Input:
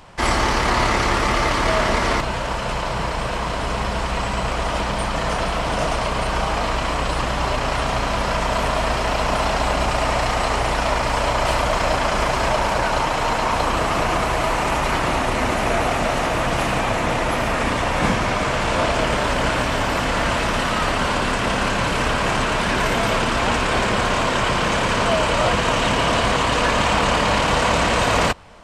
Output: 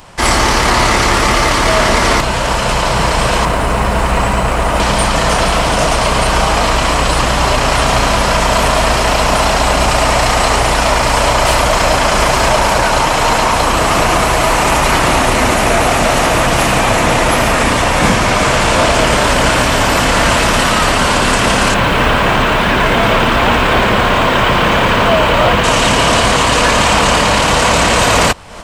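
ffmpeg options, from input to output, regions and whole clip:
-filter_complex "[0:a]asettb=1/sr,asplit=3[a][b][c];[a]atrim=end=3.454[d];[b]atrim=start=3.45:end=4.8,asetpts=PTS-STARTPTS,afade=t=in:d=0.004:c=qsin,afade=t=out:st=1.346:d=0.004:c=qsin,equalizer=f=5.2k:w=0.76:g=-9,bandreject=f=3.3k:w=25,aeval=exprs='sgn(val(0))*max(abs(val(0))-0.00178,0)':c=same[e];[c]atrim=start=4.796[f];[d][e]acrossfade=d=0.004:c1=hsin:c2=qsin[g];[g][f]acrossfade=d=0.004:c1=qsin:c2=hsin,asettb=1/sr,asplit=3[h][i][j];[h]atrim=end=21.744[k];[i]atrim=start=21.74:end=25.64,asetpts=PTS-STARTPTS,afade=t=in:d=0.004:c=qsin,afade=t=out:st=3.896:d=0.004:c=qsin,acrossover=split=3000[l][m];[m]acompressor=threshold=-46dB:ratio=4:attack=1:release=60[n];[l][n]amix=inputs=2:normalize=0,acrusher=bits=7:mix=0:aa=0.5,equalizer=f=3.5k:w=2.2:g=4.5[o];[j]atrim=start=25.636[p];[k][o]acrossfade=d=0.004:c1=hsin:c2=qsin[q];[q][p]acrossfade=d=0.004:c1=qsin:c2=hsin,acontrast=74,highshelf=f=6k:g=9.5,dynaudnorm=f=130:g=3:m=11.5dB,volume=-1dB"

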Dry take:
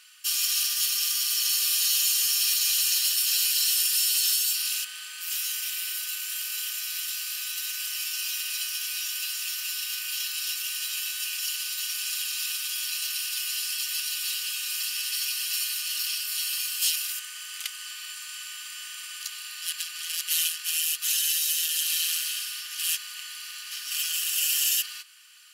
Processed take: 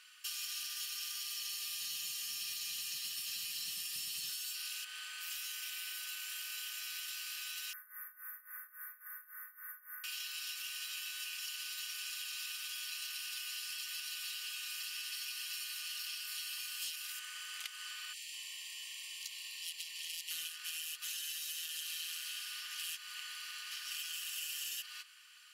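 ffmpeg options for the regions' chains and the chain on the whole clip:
-filter_complex "[0:a]asettb=1/sr,asplit=3[a][b][c];[a]atrim=end=1.194[d];[b]atrim=start=1.19:end=4.29,asetpts=PTS-STARTPTS,afade=t=in:d=0.004:c=qsin,afade=t=out:st=3.096:d=0.004:c=qsin,asubboost=boost=8:cutoff=190,bandreject=f=1.5k:w=11[e];[c]atrim=start=4.286[f];[d][e]acrossfade=d=0.004:c1=hsin:c2=qsin[g];[g][f]acrossfade=d=0.004:c1=qsin:c2=hsin,asettb=1/sr,asplit=3[h][i][j];[h]atrim=end=7.734[k];[i]atrim=start=7.73:end=10.04,asetpts=PTS-STARTPTS,afade=t=in:d=0.004:c=qsin,afade=t=out:st=2.306:d=0.004:c=qsin,asuperstop=centerf=5000:order=20:qfactor=0.56,tremolo=f=3.6:d=0.87[l];[j]atrim=start=10.036[m];[k][l]acrossfade=d=0.004:c1=hsin:c2=qsin[n];[n][m]acrossfade=d=0.004:c1=qsin:c2=hsin,asettb=1/sr,asplit=3[o][p][q];[o]atrim=end=18.134[r];[p]atrim=start=18.13:end=20.31,asetpts=PTS-STARTPTS,afade=t=in:d=0.004:c=qsin,afade=t=out:st=2.176:d=0.004:c=qsin,asuperstop=centerf=1400:order=20:qfactor=2.1,acrossover=split=190|1700[s][t][u];[t]adelay=200[v];[s]adelay=330[w];[w][v][u]amix=inputs=3:normalize=0,atrim=end_sample=96138[x];[q]atrim=start=20.306[y];[r][x]acrossfade=d=0.004:c1=hsin:c2=qsin[z];[z][y]acrossfade=d=0.004:c1=qsin:c2=hsin,highpass=f=110:w=0.5412,highpass=f=110:w=1.3066,highshelf=f=4.2k:g=-9,acrossover=split=370[aa][ab];[ab]acompressor=threshold=-38dB:ratio=4[ac];[aa][ac]amix=inputs=2:normalize=0,volume=-2dB"

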